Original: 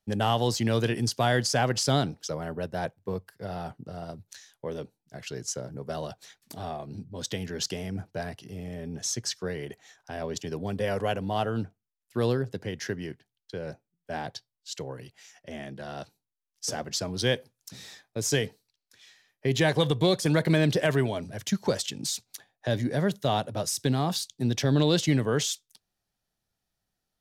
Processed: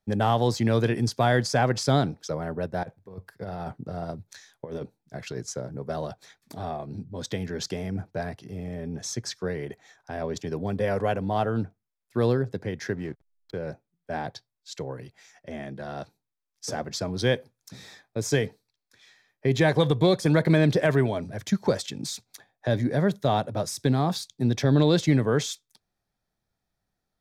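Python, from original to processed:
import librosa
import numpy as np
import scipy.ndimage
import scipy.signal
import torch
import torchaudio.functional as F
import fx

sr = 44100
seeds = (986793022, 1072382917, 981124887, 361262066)

y = fx.over_compress(x, sr, threshold_db=-36.0, ratio=-0.5, at=(2.83, 5.41))
y = fx.backlash(y, sr, play_db=-46.0, at=(12.95, 13.58))
y = fx.high_shelf(y, sr, hz=3700.0, db=-9.0)
y = fx.notch(y, sr, hz=2900.0, q=7.1)
y = y * librosa.db_to_amplitude(3.0)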